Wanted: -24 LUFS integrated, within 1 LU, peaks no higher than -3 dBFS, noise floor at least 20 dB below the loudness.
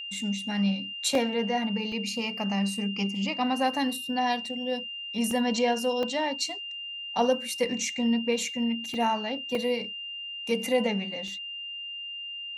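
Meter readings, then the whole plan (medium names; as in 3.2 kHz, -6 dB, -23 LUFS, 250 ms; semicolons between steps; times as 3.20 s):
dropouts 7; longest dropout 2.4 ms; steady tone 2.8 kHz; tone level -35 dBFS; loudness -28.5 LUFS; peak level -13.5 dBFS; loudness target -24.0 LUFS
-> interpolate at 1.15/1.92/5.31/6.03/8.94/9.55/11.28 s, 2.4 ms; band-stop 2.8 kHz, Q 30; trim +4.5 dB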